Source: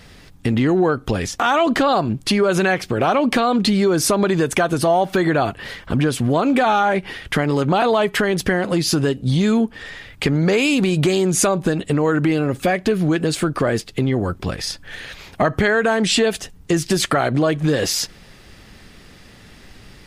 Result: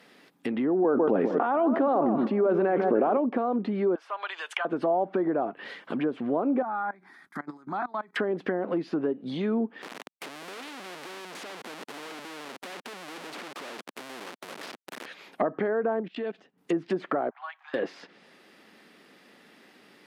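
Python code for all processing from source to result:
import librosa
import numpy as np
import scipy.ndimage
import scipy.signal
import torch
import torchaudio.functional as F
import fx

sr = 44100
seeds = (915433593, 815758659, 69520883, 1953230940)

y = fx.chain(x, sr, fx.highpass(hz=160.0, slope=12),
    fx.echo_alternate(ms=151, hz=1500.0, feedback_pct=52, wet_db=-12.5),
    fx.env_flatten(amount_pct=100), at=(0.84, 3.17))
y = fx.chain(y, sr, fx.highpass(hz=840.0, slope=24),
    fx.peak_eq(hz=3000.0, db=9.5, octaves=0.34), at=(3.95, 4.65))
y = fx.chain(y, sr, fx.fixed_phaser(hz=1200.0, stages=4),
    fx.level_steps(step_db=22), at=(6.62, 8.16))
y = fx.chain(y, sr, fx.high_shelf(hz=3200.0, db=-12.0),
    fx.schmitt(flips_db=-34.0),
    fx.spectral_comp(ratio=2.0), at=(9.82, 15.06))
y = fx.chain(y, sr, fx.bessel_lowpass(hz=2800.0, order=2),
    fx.low_shelf(hz=290.0, db=6.0),
    fx.level_steps(step_db=23), at=(16.0, 16.58))
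y = fx.chain(y, sr, fx.steep_highpass(hz=790.0, slope=72),
    fx.spacing_loss(db_at_10k=32), at=(17.3, 17.74))
y = scipy.signal.sosfilt(scipy.signal.butter(4, 230.0, 'highpass', fs=sr, output='sos'), y)
y = fx.env_lowpass_down(y, sr, base_hz=840.0, full_db=-15.0)
y = fx.peak_eq(y, sr, hz=6800.0, db=-8.5, octaves=1.5)
y = F.gain(torch.from_numpy(y), -7.0).numpy()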